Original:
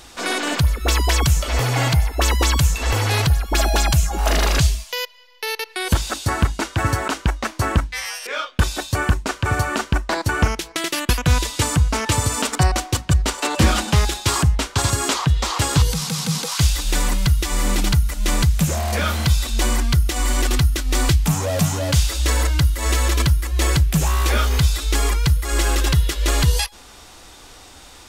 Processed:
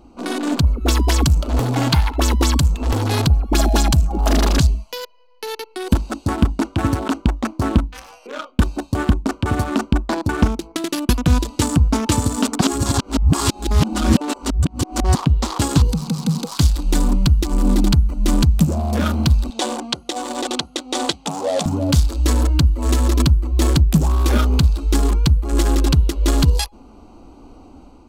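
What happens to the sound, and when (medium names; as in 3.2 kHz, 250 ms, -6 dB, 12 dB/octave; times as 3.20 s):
1.93–2.18 s: time-frequency box 810–5000 Hz +12 dB
12.61–15.15 s: reverse
19.50–21.66 s: cabinet simulation 430–9200 Hz, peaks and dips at 510 Hz +8 dB, 780 Hz +7 dB, 3.5 kHz +7 dB
whole clip: local Wiener filter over 25 samples; graphic EQ 125/250/500/2000 Hz -5/+10/-4/-5 dB; level rider gain up to 4 dB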